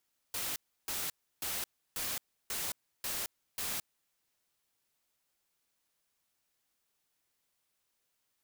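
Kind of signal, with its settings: noise bursts white, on 0.22 s, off 0.32 s, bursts 7, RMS -36.5 dBFS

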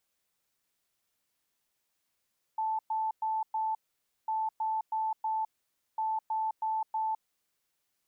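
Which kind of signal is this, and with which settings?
beep pattern sine 878 Hz, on 0.21 s, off 0.11 s, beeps 4, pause 0.53 s, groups 3, -28 dBFS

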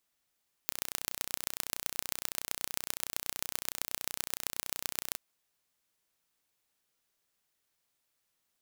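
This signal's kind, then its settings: pulse train 30.7/s, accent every 4, -3.5 dBFS 4.48 s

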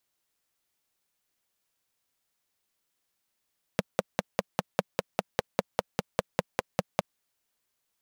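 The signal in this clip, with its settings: single-cylinder engine model, steady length 3.22 s, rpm 600, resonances 190/520 Hz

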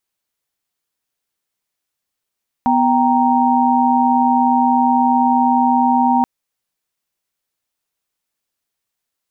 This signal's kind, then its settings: chord B3/G5/A#5 sine, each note -15.5 dBFS 3.58 s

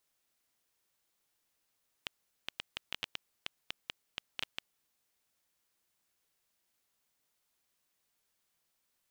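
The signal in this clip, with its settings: random clicks 5.6/s -18 dBFS 2.97 s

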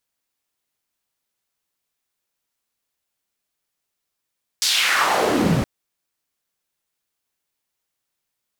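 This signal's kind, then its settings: swept filtered noise white, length 1.02 s bandpass, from 5300 Hz, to 110 Hz, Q 2.2, exponential, gain ramp +17 dB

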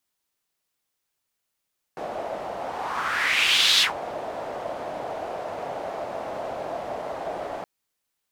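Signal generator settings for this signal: whoosh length 5.67 s, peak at 1.84, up 1.32 s, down 0.13 s, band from 660 Hz, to 3700 Hz, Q 3.3, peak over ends 14 dB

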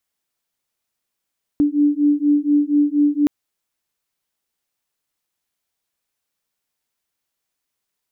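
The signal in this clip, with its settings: beating tones 290 Hz, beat 4.2 Hz, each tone -16.5 dBFS 1.67 s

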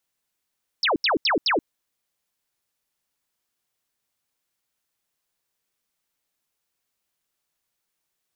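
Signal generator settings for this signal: burst of laser zaps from 5600 Hz, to 250 Hz, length 0.13 s sine, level -18 dB, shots 4, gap 0.08 s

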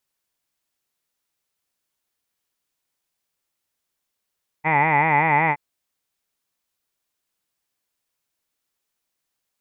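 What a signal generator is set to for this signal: formant vowel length 0.92 s, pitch 150 Hz, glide +0.5 st, vibrato depth 1.15 st, F1 870 Hz, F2 2000 Hz, F3 2400 Hz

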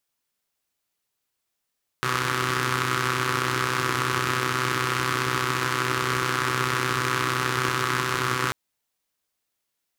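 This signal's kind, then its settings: four-cylinder engine model, steady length 6.49 s, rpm 3800, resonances 140/330/1200 Hz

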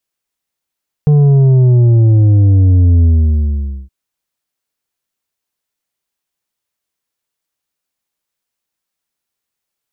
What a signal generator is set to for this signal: sub drop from 150 Hz, over 2.82 s, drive 6.5 dB, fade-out 0.85 s, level -6 dB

